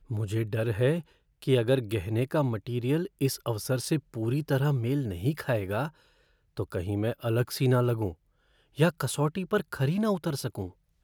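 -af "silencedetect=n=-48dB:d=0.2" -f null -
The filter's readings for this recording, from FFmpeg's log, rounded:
silence_start: 1.12
silence_end: 1.42 | silence_duration: 0.31
silence_start: 5.90
silence_end: 6.57 | silence_duration: 0.67
silence_start: 8.13
silence_end: 8.77 | silence_duration: 0.64
silence_start: 10.71
silence_end: 11.03 | silence_duration: 0.33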